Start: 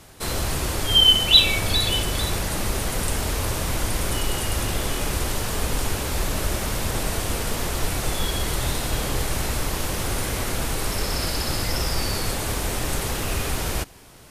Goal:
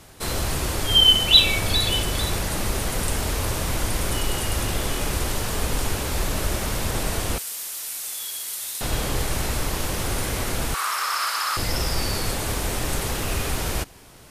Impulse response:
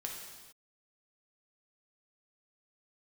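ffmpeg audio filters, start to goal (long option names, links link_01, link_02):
-filter_complex "[0:a]asettb=1/sr,asplit=3[link_01][link_02][link_03];[link_01]atrim=end=7.384[link_04];[link_02]atrim=start=7.38:end=8.81,asetpts=PTS-STARTPTS,afade=type=in:duration=0.004:curve=qsin,afade=type=out:start_time=1.426:duration=0.004:curve=qsin,aderivative[link_05];[link_03]atrim=start=8.806[link_06];[link_04][link_05]acrossfade=duration=0.004:curve1=hsin:curve2=qsin[link_07];[link_07][link_06]acrossfade=duration=0.004:curve1=qsin:curve2=hsin,asettb=1/sr,asplit=3[link_08][link_09][link_10];[link_08]atrim=end=10.744[link_11];[link_09]atrim=start=10.74:end=11.57,asetpts=PTS-STARTPTS,afade=type=in:duration=0.004:curve=qsin,afade=type=out:start_time=0.826:duration=0.004:curve=qsin,highpass=frequency=1200:width_type=q:width=5.3[link_12];[link_10]atrim=start=11.566[link_13];[link_11][link_12]acrossfade=duration=0.004:curve1=hsin:curve2=qsin[link_14];[link_14][link_13]acrossfade=duration=0.004:curve1=qsin:curve2=hsin"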